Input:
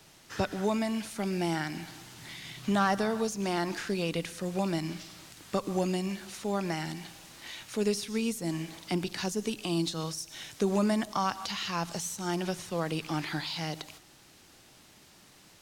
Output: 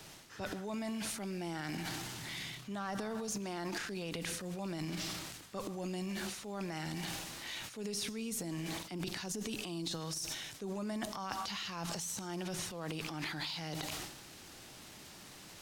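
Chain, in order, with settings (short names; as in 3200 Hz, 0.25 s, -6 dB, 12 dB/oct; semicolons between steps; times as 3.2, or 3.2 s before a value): transient shaper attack -5 dB, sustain +11 dB; reverse; compressor 6:1, threshold -42 dBFS, peak gain reduction 18.5 dB; reverse; gain +4 dB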